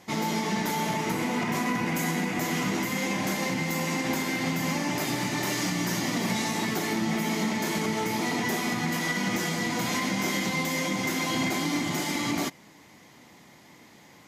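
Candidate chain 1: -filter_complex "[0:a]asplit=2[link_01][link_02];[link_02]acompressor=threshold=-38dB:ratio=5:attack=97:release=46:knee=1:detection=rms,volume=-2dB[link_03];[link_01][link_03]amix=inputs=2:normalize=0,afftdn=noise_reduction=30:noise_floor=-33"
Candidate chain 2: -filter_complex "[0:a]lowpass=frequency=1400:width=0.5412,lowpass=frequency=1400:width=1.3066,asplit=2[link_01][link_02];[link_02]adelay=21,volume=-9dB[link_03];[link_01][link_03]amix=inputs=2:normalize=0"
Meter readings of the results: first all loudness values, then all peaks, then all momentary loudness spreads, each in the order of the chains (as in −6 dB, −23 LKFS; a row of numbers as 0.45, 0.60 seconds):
−26.0, −29.5 LKFS; −15.5, −16.5 dBFS; 1, 2 LU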